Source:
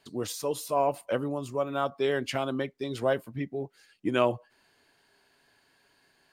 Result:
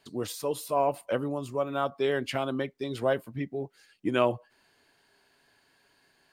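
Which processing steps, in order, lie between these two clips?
dynamic equaliser 6,200 Hz, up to −5 dB, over −54 dBFS, Q 2.1

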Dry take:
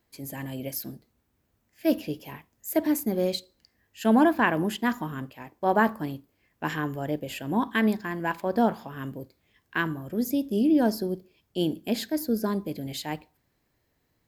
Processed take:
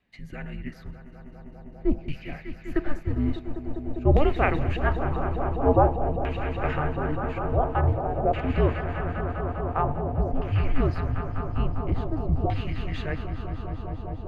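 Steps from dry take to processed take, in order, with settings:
echo that builds up and dies away 200 ms, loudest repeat 5, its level −12 dB
auto-filter low-pass saw down 0.48 Hz 950–2,800 Hz
frequency shifter −300 Hz
parametric band 1,400 Hz −14 dB 0.21 octaves

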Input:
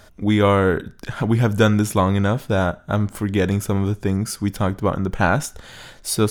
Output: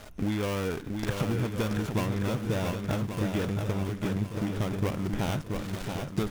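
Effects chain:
gap after every zero crossing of 0.3 ms
downward compressor 8 to 1, threshold −30 dBFS, peak gain reduction 19 dB
feedback echo with a long and a short gap by turns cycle 1,131 ms, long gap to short 1.5 to 1, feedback 39%, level −5 dB
level +3 dB

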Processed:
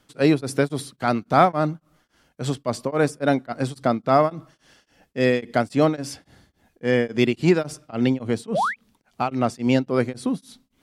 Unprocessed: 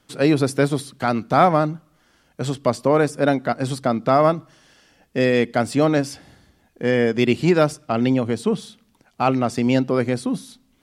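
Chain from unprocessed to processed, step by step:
sound drawn into the spectrogram rise, 0:08.54–0:08.76, 490–2,600 Hz −20 dBFS
tremolo along a rectified sine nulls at 3.6 Hz

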